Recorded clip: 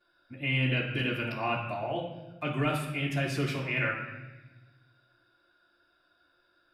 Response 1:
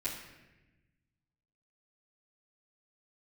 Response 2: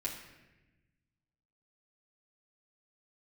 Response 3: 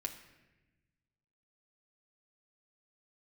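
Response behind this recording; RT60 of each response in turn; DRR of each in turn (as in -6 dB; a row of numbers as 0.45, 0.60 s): 1; 1.1, 1.1, 1.1 s; -12.0, -5.0, 2.5 dB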